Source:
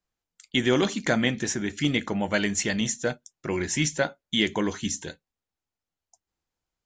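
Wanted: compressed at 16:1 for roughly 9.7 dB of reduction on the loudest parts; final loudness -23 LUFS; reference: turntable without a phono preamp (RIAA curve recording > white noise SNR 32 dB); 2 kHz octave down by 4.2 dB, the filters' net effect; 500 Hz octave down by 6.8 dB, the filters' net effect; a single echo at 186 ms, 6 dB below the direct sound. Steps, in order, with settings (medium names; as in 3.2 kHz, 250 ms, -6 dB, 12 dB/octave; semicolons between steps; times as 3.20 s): peaking EQ 500 Hz -4.5 dB; peaking EQ 2 kHz -8 dB; compression 16:1, threshold -30 dBFS; RIAA curve recording; delay 186 ms -6 dB; white noise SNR 32 dB; trim +7 dB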